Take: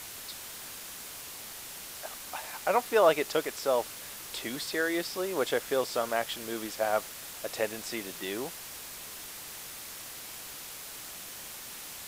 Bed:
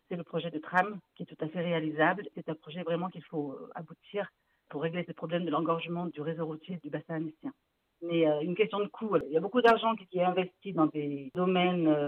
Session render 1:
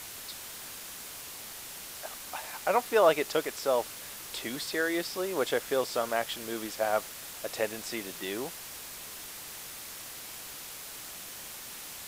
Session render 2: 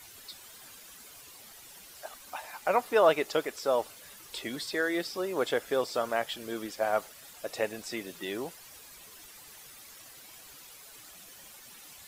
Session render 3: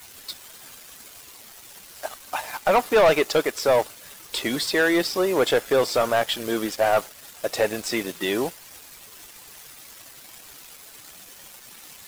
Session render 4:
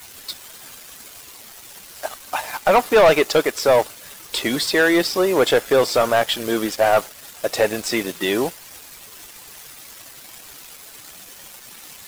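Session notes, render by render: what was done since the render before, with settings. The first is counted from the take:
no audible change
noise reduction 11 dB, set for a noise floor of -44 dBFS
waveshaping leveller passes 3
trim +4 dB

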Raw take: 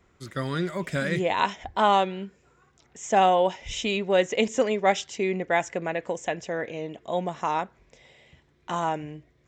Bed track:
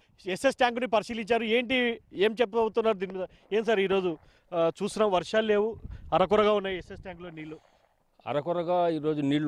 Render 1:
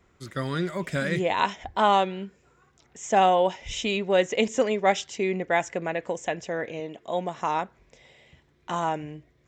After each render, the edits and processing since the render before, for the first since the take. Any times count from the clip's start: 6.80–7.38 s: high-pass 180 Hz 6 dB/octave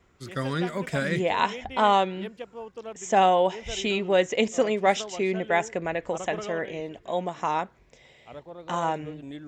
add bed track -13.5 dB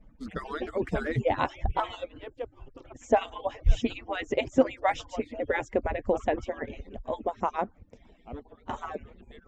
harmonic-percussive separation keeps percussive; tilt EQ -4.5 dB/octave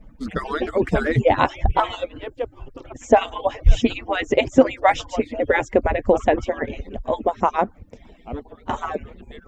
trim +9.5 dB; peak limiter -1 dBFS, peak gain reduction 2.5 dB

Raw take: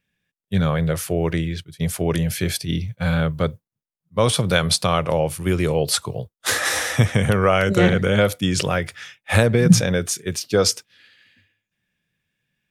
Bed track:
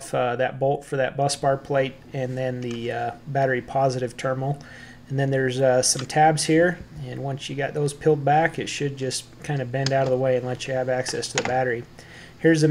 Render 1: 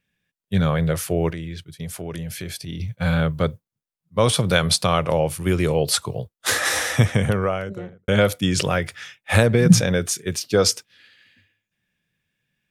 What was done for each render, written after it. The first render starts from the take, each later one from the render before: 1.30–2.80 s: compression 2.5:1, threshold -32 dBFS; 6.97–8.08 s: studio fade out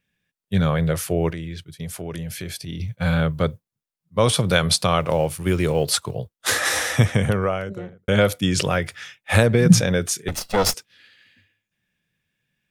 5.00–6.12 s: companding laws mixed up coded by A; 10.28–10.74 s: comb filter that takes the minimum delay 1.5 ms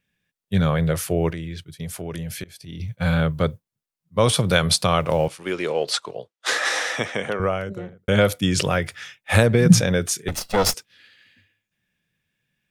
2.44–2.95 s: fade in, from -21.5 dB; 5.28–7.40 s: band-pass 370–6000 Hz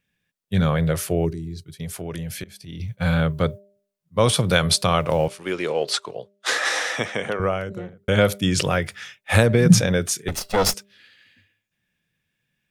de-hum 199.9 Hz, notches 3; 1.25–1.65 s: time-frequency box 440–3800 Hz -17 dB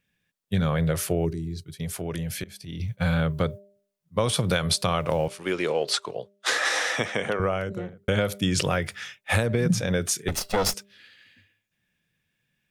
compression 5:1, threshold -20 dBFS, peak gain reduction 12 dB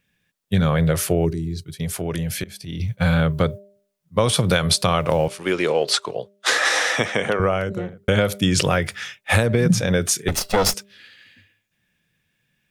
trim +5.5 dB

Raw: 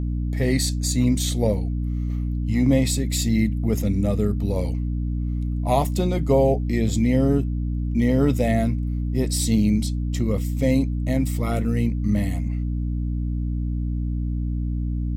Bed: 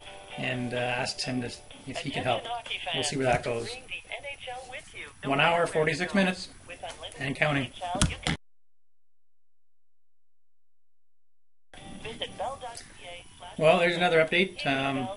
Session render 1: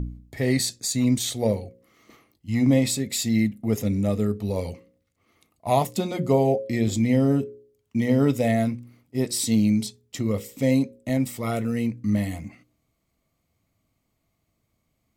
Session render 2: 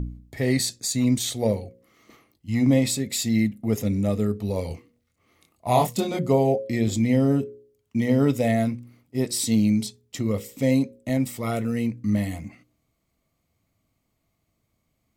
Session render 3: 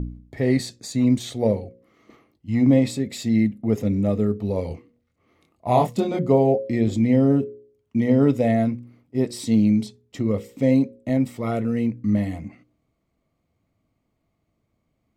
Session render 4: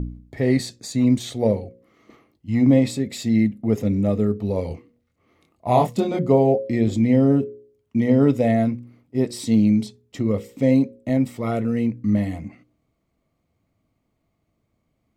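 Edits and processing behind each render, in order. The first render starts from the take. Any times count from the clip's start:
de-hum 60 Hz, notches 9
4.68–6.19 s: doubling 25 ms -2.5 dB
low-pass 2.4 kHz 6 dB/octave; peaking EQ 350 Hz +3.5 dB 2.2 oct
trim +1 dB

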